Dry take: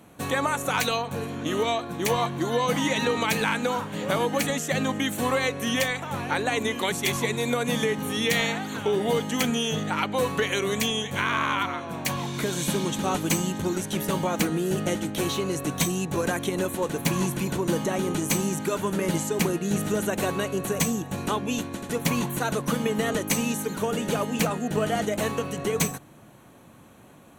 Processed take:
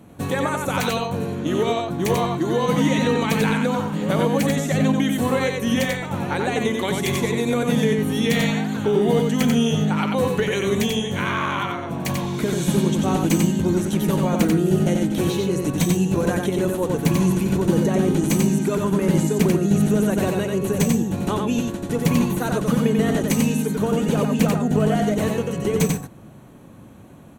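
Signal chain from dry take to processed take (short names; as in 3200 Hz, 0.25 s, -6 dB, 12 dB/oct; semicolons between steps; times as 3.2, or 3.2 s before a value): low shelf 470 Hz +10.5 dB; on a send: echo 91 ms -3.5 dB; on the sum: gain -2 dB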